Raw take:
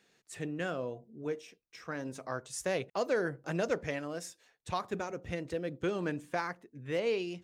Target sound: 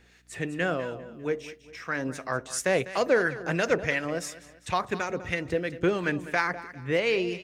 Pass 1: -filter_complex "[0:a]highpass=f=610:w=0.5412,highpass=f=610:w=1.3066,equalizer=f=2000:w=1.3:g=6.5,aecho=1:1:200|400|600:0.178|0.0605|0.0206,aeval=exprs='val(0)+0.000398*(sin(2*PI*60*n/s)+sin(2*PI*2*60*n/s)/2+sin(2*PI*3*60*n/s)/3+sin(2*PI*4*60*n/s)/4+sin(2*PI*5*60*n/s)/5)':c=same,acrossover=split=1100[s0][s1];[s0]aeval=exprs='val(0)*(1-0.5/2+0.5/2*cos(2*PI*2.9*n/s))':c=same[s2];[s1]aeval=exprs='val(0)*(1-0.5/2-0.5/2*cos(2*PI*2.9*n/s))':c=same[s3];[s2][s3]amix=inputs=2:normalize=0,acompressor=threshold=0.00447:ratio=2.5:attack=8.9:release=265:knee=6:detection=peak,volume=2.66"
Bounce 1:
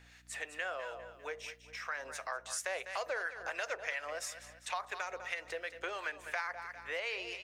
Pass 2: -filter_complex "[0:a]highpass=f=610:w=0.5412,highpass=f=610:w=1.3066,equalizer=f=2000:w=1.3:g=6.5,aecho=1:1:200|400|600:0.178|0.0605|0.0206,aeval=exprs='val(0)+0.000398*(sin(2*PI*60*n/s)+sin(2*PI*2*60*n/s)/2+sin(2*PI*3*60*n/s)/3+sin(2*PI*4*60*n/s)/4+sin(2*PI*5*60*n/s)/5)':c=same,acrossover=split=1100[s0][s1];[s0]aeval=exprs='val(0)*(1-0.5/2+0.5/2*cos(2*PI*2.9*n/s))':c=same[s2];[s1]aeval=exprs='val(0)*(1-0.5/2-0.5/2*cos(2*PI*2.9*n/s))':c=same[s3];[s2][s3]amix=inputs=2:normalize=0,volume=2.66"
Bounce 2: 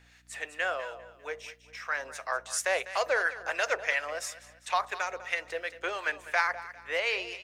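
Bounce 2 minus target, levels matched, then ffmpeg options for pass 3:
500 Hz band -4.0 dB
-filter_complex "[0:a]equalizer=f=2000:w=1.3:g=6.5,aecho=1:1:200|400|600:0.178|0.0605|0.0206,aeval=exprs='val(0)+0.000398*(sin(2*PI*60*n/s)+sin(2*PI*2*60*n/s)/2+sin(2*PI*3*60*n/s)/3+sin(2*PI*4*60*n/s)/4+sin(2*PI*5*60*n/s)/5)':c=same,acrossover=split=1100[s0][s1];[s0]aeval=exprs='val(0)*(1-0.5/2+0.5/2*cos(2*PI*2.9*n/s))':c=same[s2];[s1]aeval=exprs='val(0)*(1-0.5/2-0.5/2*cos(2*PI*2.9*n/s))':c=same[s3];[s2][s3]amix=inputs=2:normalize=0,volume=2.66"

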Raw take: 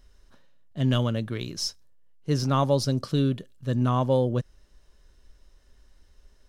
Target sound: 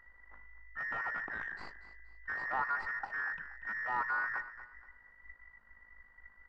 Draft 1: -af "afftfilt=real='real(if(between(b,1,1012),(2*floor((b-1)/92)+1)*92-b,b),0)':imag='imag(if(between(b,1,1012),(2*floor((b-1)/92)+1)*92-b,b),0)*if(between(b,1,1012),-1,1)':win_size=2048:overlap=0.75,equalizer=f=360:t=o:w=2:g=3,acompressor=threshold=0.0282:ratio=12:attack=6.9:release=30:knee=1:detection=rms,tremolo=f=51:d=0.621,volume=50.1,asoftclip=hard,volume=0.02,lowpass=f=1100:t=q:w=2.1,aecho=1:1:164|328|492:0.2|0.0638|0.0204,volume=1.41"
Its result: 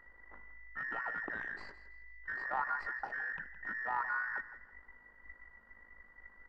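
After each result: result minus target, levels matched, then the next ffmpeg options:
compression: peak gain reduction +8.5 dB; echo 74 ms early; 500 Hz band +2.5 dB
-af "afftfilt=real='real(if(between(b,1,1012),(2*floor((b-1)/92)+1)*92-b,b),0)':imag='imag(if(between(b,1,1012),(2*floor((b-1)/92)+1)*92-b,b),0)*if(between(b,1,1012),-1,1)':win_size=2048:overlap=0.75,equalizer=f=360:t=o:w=2:g=3,acompressor=threshold=0.0708:ratio=12:attack=6.9:release=30:knee=1:detection=rms,tremolo=f=51:d=0.621,volume=50.1,asoftclip=hard,volume=0.02,lowpass=f=1100:t=q:w=2.1,aecho=1:1:164|328|492:0.2|0.0638|0.0204,volume=1.41"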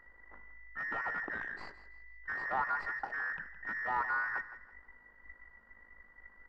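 echo 74 ms early; 500 Hz band +3.0 dB
-af "afftfilt=real='real(if(between(b,1,1012),(2*floor((b-1)/92)+1)*92-b,b),0)':imag='imag(if(between(b,1,1012),(2*floor((b-1)/92)+1)*92-b,b),0)*if(between(b,1,1012),-1,1)':win_size=2048:overlap=0.75,equalizer=f=360:t=o:w=2:g=3,acompressor=threshold=0.0708:ratio=12:attack=6.9:release=30:knee=1:detection=rms,tremolo=f=51:d=0.621,volume=50.1,asoftclip=hard,volume=0.02,lowpass=f=1100:t=q:w=2.1,aecho=1:1:238|476|714:0.2|0.0638|0.0204,volume=1.41"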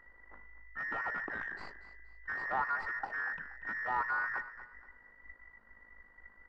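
500 Hz band +3.0 dB
-af "afftfilt=real='real(if(between(b,1,1012),(2*floor((b-1)/92)+1)*92-b,b),0)':imag='imag(if(between(b,1,1012),(2*floor((b-1)/92)+1)*92-b,b),0)*if(between(b,1,1012),-1,1)':win_size=2048:overlap=0.75,equalizer=f=360:t=o:w=2:g=-6,acompressor=threshold=0.0708:ratio=12:attack=6.9:release=30:knee=1:detection=rms,tremolo=f=51:d=0.621,volume=50.1,asoftclip=hard,volume=0.02,lowpass=f=1100:t=q:w=2.1,aecho=1:1:238|476|714:0.2|0.0638|0.0204,volume=1.41"

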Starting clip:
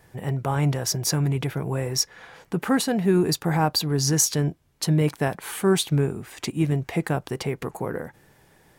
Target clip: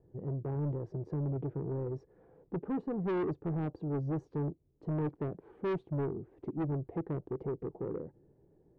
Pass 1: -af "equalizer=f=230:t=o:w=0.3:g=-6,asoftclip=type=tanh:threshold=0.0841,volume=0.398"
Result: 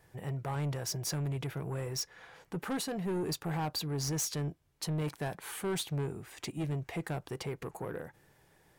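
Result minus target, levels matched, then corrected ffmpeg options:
500 Hz band -2.5 dB
-af "lowpass=f=380:t=q:w=2,equalizer=f=230:t=o:w=0.3:g=-6,asoftclip=type=tanh:threshold=0.0841,volume=0.398"

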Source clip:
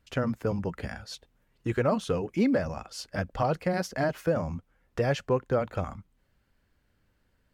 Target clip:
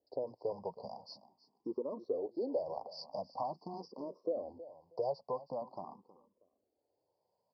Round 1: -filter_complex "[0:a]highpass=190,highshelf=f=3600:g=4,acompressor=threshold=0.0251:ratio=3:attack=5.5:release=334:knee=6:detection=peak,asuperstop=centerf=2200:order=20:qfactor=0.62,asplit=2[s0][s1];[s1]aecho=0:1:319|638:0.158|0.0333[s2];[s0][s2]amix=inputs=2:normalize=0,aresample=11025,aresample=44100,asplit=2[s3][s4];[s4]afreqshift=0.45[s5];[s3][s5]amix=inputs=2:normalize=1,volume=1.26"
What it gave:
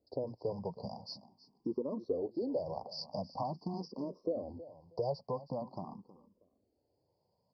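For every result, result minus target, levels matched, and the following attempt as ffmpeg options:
250 Hz band +4.5 dB; 4 kHz band +4.0 dB
-filter_complex "[0:a]highpass=450,highshelf=f=3600:g=4,acompressor=threshold=0.0251:ratio=3:attack=5.5:release=334:knee=6:detection=peak,asuperstop=centerf=2200:order=20:qfactor=0.62,asplit=2[s0][s1];[s1]aecho=0:1:319|638:0.158|0.0333[s2];[s0][s2]amix=inputs=2:normalize=0,aresample=11025,aresample=44100,asplit=2[s3][s4];[s4]afreqshift=0.45[s5];[s3][s5]amix=inputs=2:normalize=1,volume=1.26"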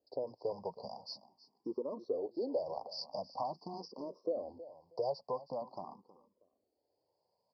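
4 kHz band +5.5 dB
-filter_complex "[0:a]highpass=450,highshelf=f=3600:g=-6.5,acompressor=threshold=0.0251:ratio=3:attack=5.5:release=334:knee=6:detection=peak,asuperstop=centerf=2200:order=20:qfactor=0.62,asplit=2[s0][s1];[s1]aecho=0:1:319|638:0.158|0.0333[s2];[s0][s2]amix=inputs=2:normalize=0,aresample=11025,aresample=44100,asplit=2[s3][s4];[s4]afreqshift=0.45[s5];[s3][s5]amix=inputs=2:normalize=1,volume=1.26"

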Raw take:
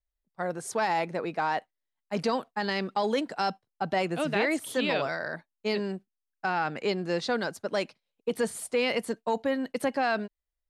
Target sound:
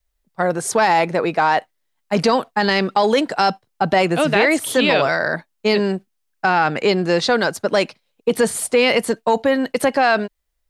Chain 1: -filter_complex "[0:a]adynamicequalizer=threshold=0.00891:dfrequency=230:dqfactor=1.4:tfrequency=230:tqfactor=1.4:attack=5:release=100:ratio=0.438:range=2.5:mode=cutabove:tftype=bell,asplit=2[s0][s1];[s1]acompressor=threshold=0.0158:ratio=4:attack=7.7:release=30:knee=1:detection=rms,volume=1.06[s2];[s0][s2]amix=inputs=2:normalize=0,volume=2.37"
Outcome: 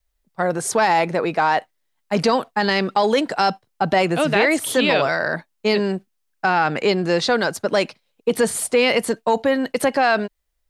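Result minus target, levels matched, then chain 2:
compression: peak gain reduction +5 dB
-filter_complex "[0:a]adynamicequalizer=threshold=0.00891:dfrequency=230:dqfactor=1.4:tfrequency=230:tqfactor=1.4:attack=5:release=100:ratio=0.438:range=2.5:mode=cutabove:tftype=bell,asplit=2[s0][s1];[s1]acompressor=threshold=0.0335:ratio=4:attack=7.7:release=30:knee=1:detection=rms,volume=1.06[s2];[s0][s2]amix=inputs=2:normalize=0,volume=2.37"

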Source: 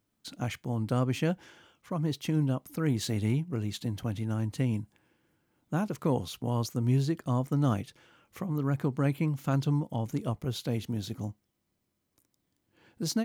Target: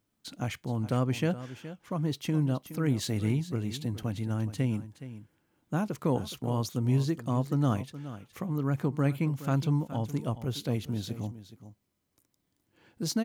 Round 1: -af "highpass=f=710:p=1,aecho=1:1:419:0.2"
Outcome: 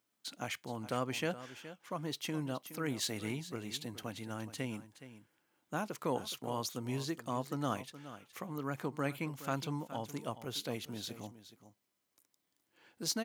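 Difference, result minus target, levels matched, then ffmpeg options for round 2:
1 kHz band +6.5 dB
-af "aecho=1:1:419:0.2"

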